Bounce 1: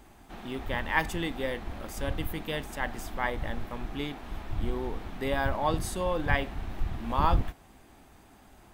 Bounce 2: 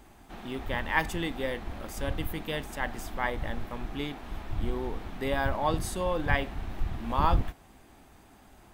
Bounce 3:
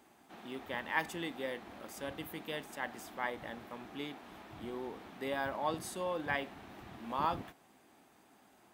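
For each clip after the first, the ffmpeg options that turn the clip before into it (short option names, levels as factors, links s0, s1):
-af anull
-af "highpass=200,volume=0.473"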